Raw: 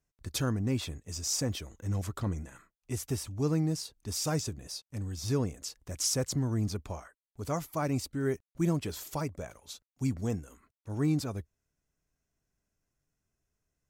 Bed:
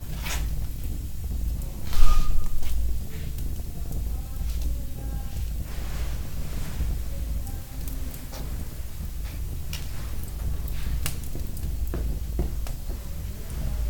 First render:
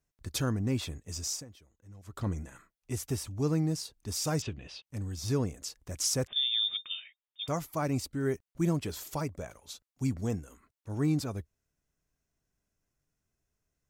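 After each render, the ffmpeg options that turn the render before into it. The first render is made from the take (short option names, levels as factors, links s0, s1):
-filter_complex "[0:a]asettb=1/sr,asplit=3[s0][s1][s2];[s0]atrim=end=4.424[s3];[s1]atrim=start=4.42:end=4.85,asetpts=PTS-STARTPTS,afade=t=in:d=0.004:c=qsin,afade=t=out:st=0.426:d=0.004:c=qsin,lowpass=f=2900:t=q:w=4.7[s4];[s2]atrim=start=4.846[s5];[s3][s4]acrossfade=d=0.004:c1=hsin:c2=qsin[s6];[s6][s5]acrossfade=d=0.004:c1=qsin:c2=hsin,asettb=1/sr,asplit=3[s7][s8][s9];[s7]atrim=end=6.274[s10];[s8]atrim=start=6.27:end=7.48,asetpts=PTS-STARTPTS,afade=t=in:d=0.004:c=qsin,afade=t=out:st=1.206:d=0.004:c=qsin,lowpass=f=3100:t=q:w=0.5098,lowpass=f=3100:t=q:w=0.6013,lowpass=f=3100:t=q:w=0.9,lowpass=f=3100:t=q:w=2.563,afreqshift=-3700[s11];[s9]atrim=start=7.476[s12];[s10][s11]acrossfade=d=0.004:c1=hsin:c2=qsin[s13];[s13][s12]acrossfade=d=0.004:c1=qsin:c2=hsin,asplit=3[s14][s15][s16];[s14]atrim=end=1.45,asetpts=PTS-STARTPTS,afade=t=out:st=1.24:d=0.21:silence=0.112202[s17];[s15]atrim=start=1.45:end=2.04,asetpts=PTS-STARTPTS,volume=0.112[s18];[s16]atrim=start=2.04,asetpts=PTS-STARTPTS,afade=t=in:d=0.21:silence=0.112202[s19];[s17][s18][s19]concat=n=3:v=0:a=1"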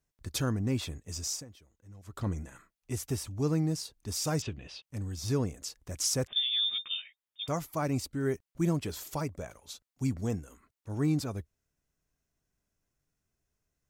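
-filter_complex "[0:a]asettb=1/sr,asplit=3[s0][s1][s2];[s0]atrim=end=6.334[s3];[s1]atrim=start=6.33:end=7.02,asetpts=PTS-STARTPTS,afade=t=in:d=0.004:c=qsin,afade=t=out:st=0.686:d=0.004:c=qsin,asplit=2[s4][s5];[s5]adelay=13,volume=0.75[s6];[s4][s6]amix=inputs=2:normalize=0,atrim=end_sample=30429[s7];[s2]atrim=start=7.016[s8];[s3][s7]acrossfade=d=0.004:c1=hsin:c2=qsin[s9];[s9][s8]acrossfade=d=0.004:c1=qsin:c2=hsin"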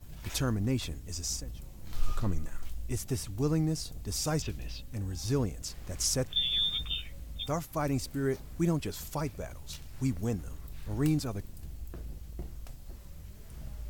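-filter_complex "[1:a]volume=0.211[s0];[0:a][s0]amix=inputs=2:normalize=0"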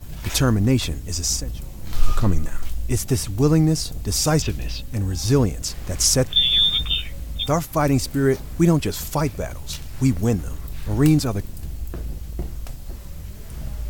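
-af "volume=3.98"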